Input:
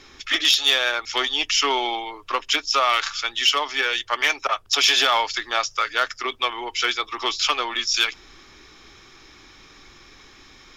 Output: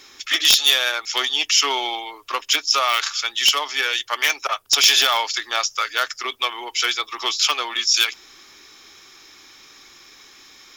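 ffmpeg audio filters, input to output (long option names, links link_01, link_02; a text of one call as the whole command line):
ffmpeg -i in.wav -af "aemphasis=mode=production:type=bsi,aeval=exprs='(mod(1.06*val(0)+1,2)-1)/1.06':channel_layout=same,volume=-1dB" out.wav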